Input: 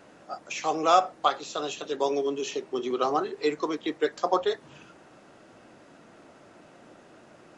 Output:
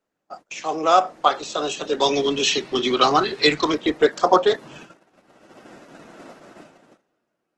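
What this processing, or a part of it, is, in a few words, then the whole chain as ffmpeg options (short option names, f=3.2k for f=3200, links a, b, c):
video call: -filter_complex "[0:a]asettb=1/sr,asplit=3[a][b][c];[a]atrim=end=1.994[d];[b]atrim=start=1.99:end=3.72,asetpts=PTS-STARTPTS,afade=t=in:d=0.004:c=qsin,afade=t=out:st=1.726:d=0.004:c=qsin,equalizer=f=125:t=o:w=1:g=8,equalizer=f=500:t=o:w=1:g=-5,equalizer=f=2k:t=o:w=1:g=5,equalizer=f=4k:t=o:w=1:g=11[e];[c]atrim=start=3.716[f];[d][e]acrossfade=d=0.004:c1=hsin:c2=qsin[g];[g][f]acrossfade=d=0.004:c1=qsin:c2=hsin,highpass=f=130:w=0.5412,highpass=f=130:w=1.3066,dynaudnorm=f=130:g=13:m=12dB,agate=range=-26dB:threshold=-40dB:ratio=16:detection=peak" -ar 48000 -c:a libopus -b:a 16k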